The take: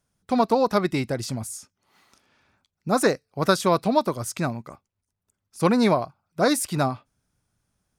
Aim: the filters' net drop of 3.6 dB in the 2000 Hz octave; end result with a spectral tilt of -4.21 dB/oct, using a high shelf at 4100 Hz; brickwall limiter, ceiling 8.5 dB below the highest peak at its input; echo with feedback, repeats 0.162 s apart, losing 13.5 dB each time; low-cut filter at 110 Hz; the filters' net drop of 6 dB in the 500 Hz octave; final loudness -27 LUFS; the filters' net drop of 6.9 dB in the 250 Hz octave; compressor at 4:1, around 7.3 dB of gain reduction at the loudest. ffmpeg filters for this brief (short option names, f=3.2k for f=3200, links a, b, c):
-af "highpass=110,equalizer=f=250:t=o:g=-7,equalizer=f=500:t=o:g=-5.5,equalizer=f=2k:t=o:g=-6,highshelf=f=4.1k:g=7,acompressor=threshold=-27dB:ratio=4,alimiter=limit=-21.5dB:level=0:latency=1,aecho=1:1:162|324:0.211|0.0444,volume=6.5dB"